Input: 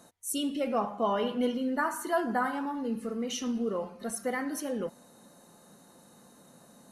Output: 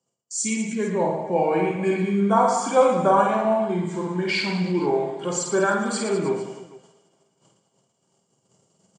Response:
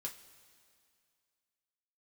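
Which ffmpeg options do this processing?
-filter_complex "[0:a]bandreject=f=1.7k:w=13,agate=range=-27dB:threshold=-53dB:ratio=16:detection=peak,highpass=98,bandreject=f=50:t=h:w=6,bandreject=f=100:t=h:w=6,bandreject=f=150:t=h:w=6,bandreject=f=200:t=h:w=6,acrossover=split=540|5500[a][b][c];[b]dynaudnorm=f=240:g=13:m=9dB[d];[c]afreqshift=-310[e];[a][d][e]amix=inputs=3:normalize=0,asetrate=33957,aresample=44100,lowpass=f=7.4k:t=q:w=2.1,aecho=1:1:50|115|199.5|309.4|452.2:0.631|0.398|0.251|0.158|0.1,asplit=2[f][g];[1:a]atrim=start_sample=2205,lowpass=3.7k[h];[g][h]afir=irnorm=-1:irlink=0,volume=-10.5dB[i];[f][i]amix=inputs=2:normalize=0,volume=2dB"

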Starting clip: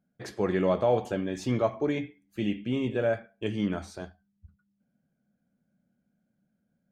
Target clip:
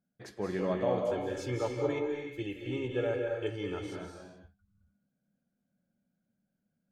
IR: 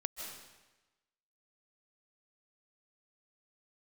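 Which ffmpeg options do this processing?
-filter_complex "[0:a]asettb=1/sr,asplit=3[a][b][c];[a]atrim=end=1.094[d];[b]atrim=start=1.09:end=3.81,asetpts=PTS-STARTPTS,afade=t=in:d=0.004:c=qsin,afade=t=out:st=2.716:d=0.004:c=qsin,aecho=1:1:2.3:0.92,atrim=end_sample=119952[e];[c]atrim=start=3.806[f];[d][e]acrossfade=d=0.004:c1=hsin:c2=qsin[g];[g][f]acrossfade=d=0.004:c1=qsin:c2=hsin[h];[1:a]atrim=start_sample=2205,afade=t=out:st=0.42:d=0.01,atrim=end_sample=18963,asetrate=37485,aresample=44100[i];[h][i]afir=irnorm=-1:irlink=0,volume=-6.5dB"

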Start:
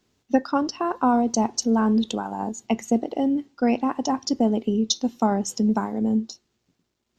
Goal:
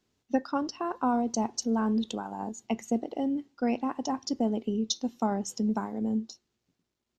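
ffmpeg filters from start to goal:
-af "aresample=32000,aresample=44100,volume=-7dB"

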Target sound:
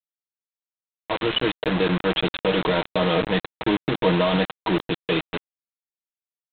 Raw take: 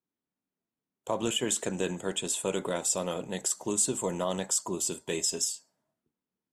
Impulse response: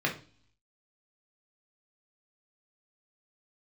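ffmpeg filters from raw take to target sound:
-af "dynaudnorm=f=290:g=11:m=16dB,agate=range=-6dB:threshold=-29dB:ratio=16:detection=peak,alimiter=limit=-11dB:level=0:latency=1:release=26,highpass=47,aecho=1:1:6.4:0.83,aresample=8000,acrusher=bits=3:mix=0:aa=0.000001,aresample=44100,volume=-1.5dB"

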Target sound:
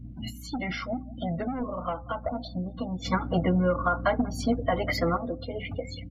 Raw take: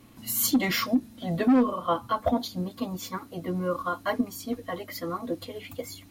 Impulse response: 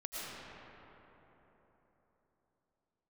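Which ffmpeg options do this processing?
-filter_complex "[0:a]asoftclip=type=hard:threshold=-20.5dB,aecho=1:1:1.4:0.46,acompressor=threshold=-37dB:ratio=8,highshelf=f=9.2k:g=-3.5,aeval=exprs='val(0)+0.00316*(sin(2*PI*60*n/s)+sin(2*PI*2*60*n/s)/2+sin(2*PI*3*60*n/s)/3+sin(2*PI*4*60*n/s)/4+sin(2*PI*5*60*n/s)/5)':c=same,aemphasis=mode=reproduction:type=50kf,asplit=2[a][b];[b]adelay=187,lowpass=f=2.4k:p=1,volume=-19dB,asplit=2[c][d];[d]adelay=187,lowpass=f=2.4k:p=1,volume=0.38,asplit=2[e][f];[f]adelay=187,lowpass=f=2.4k:p=1,volume=0.38[g];[a][c][e][g]amix=inputs=4:normalize=0,asplit=3[h][i][j];[h]afade=t=out:st=3.04:d=0.02[k];[i]acontrast=85,afade=t=in:st=3.04:d=0.02,afade=t=out:st=5.16:d=0.02[l];[j]afade=t=in:st=5.16:d=0.02[m];[k][l][m]amix=inputs=3:normalize=0,afftdn=nr=32:nf=-48,bandreject=f=259.4:t=h:w=4,bandreject=f=518.8:t=h:w=4,bandreject=f=778.2:t=h:w=4,volume=8.5dB"

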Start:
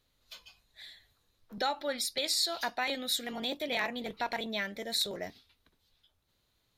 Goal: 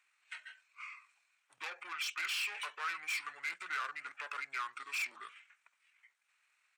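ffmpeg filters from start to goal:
-af "asetrate=26990,aresample=44100,atempo=1.63392,asoftclip=type=tanh:threshold=-35.5dB,highpass=f=1.4k:t=q:w=2.1"

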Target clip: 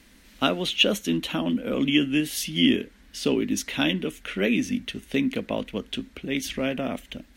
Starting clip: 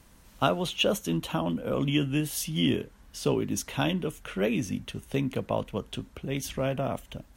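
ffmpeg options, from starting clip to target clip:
-af "equalizer=f=125:t=o:w=1:g=-10,equalizer=f=250:t=o:w=1:g=9,equalizer=f=1k:t=o:w=1:g=-6,equalizer=f=2k:t=o:w=1:g=9,equalizer=f=4k:t=o:w=1:g=6"

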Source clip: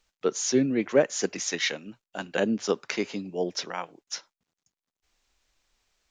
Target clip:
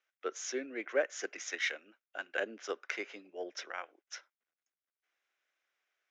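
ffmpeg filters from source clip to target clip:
-af "adynamicsmooth=sensitivity=5.5:basefreq=5.5k,highpass=f=380:w=0.5412,highpass=f=380:w=1.3066,equalizer=f=440:t=q:w=4:g=-4,equalizer=f=920:t=q:w=4:g=-7,equalizer=f=1.5k:t=q:w=4:g=7,equalizer=f=2.1k:t=q:w=4:g=5,equalizer=f=4.4k:t=q:w=4:g=-9,lowpass=f=7.1k:w=0.5412,lowpass=f=7.1k:w=1.3066,volume=-8dB"

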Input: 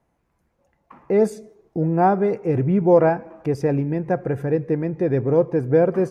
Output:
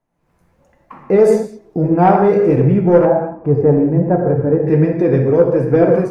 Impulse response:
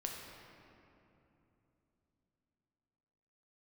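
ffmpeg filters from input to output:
-filter_complex "[0:a]asettb=1/sr,asplit=3[a][b][c];[a]atrim=end=2.124[d];[b]atrim=start=2.12:end=2.53,asetpts=PTS-STARTPTS,afade=t=in:d=0.004:c=qsin,afade=t=out:st=0.406:d=0.004:c=qsin,asplit=2[e][f];[f]adelay=30,volume=-4dB[g];[e][g]amix=inputs=2:normalize=0,atrim=end_sample=18081[h];[c]atrim=start=2.526[i];[d][h]acrossfade=d=0.004:c1=hsin:c2=qsin[j];[j][i]acrossfade=d=0.004:c1=qsin:c2=hsin[k];[1:a]atrim=start_sample=2205,afade=t=out:st=0.25:d=0.01,atrim=end_sample=11466[l];[k][l]afir=irnorm=-1:irlink=0,asoftclip=type=tanh:threshold=-8.5dB,asettb=1/sr,asplit=3[m][n][o];[m]atrim=end=3.054[p];[n]atrim=start=3.05:end=4.67,asetpts=PTS-STARTPTS,afade=t=in:d=0.004:c=qsin,afade=t=out:st=1.616:d=0.004:c=qsin,lowpass=1k[q];[o]atrim=start=4.666[r];[p][q]acrossfade=d=0.004:c1=hsin:c2=qsin[s];[s][r]acrossfade=d=0.004:c1=qsin:c2=hsin,flanger=delay=3:depth=8.7:regen=62:speed=1.2:shape=sinusoidal,dynaudnorm=f=100:g=5:m=16dB"

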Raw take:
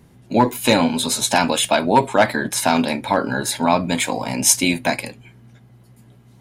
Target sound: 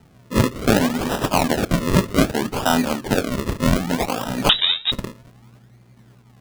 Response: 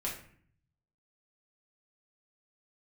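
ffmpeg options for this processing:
-filter_complex "[0:a]acrusher=samples=39:mix=1:aa=0.000001:lfo=1:lforange=39:lforate=0.64,asettb=1/sr,asplit=3[a][b][c];[a]atrim=end=4.494[d];[b]atrim=start=4.49:end=4.92,asetpts=PTS-STARTPTS,afade=t=in:d=0.004:c=qsin,afade=t=out:st=0.426:d=0.004:c=qsin,lowpass=f=3.3k:t=q:w=0.5098,lowpass=f=3.3k:t=q:w=0.6013,lowpass=f=3.3k:t=q:w=0.9,lowpass=f=3.3k:t=q:w=2.563,afreqshift=-3900[e];[c]atrim=start=4.916[f];[d][e]acrossfade=d=0.004:c1=hsin:c2=qsin[g];[g][f]acrossfade=d=0.004:c1=qsin:c2=hsin,asplit=2[h][i];[1:a]atrim=start_sample=2205[j];[i][j]afir=irnorm=-1:irlink=0,volume=-24.5dB[k];[h][k]amix=inputs=2:normalize=0,volume=-1.5dB"

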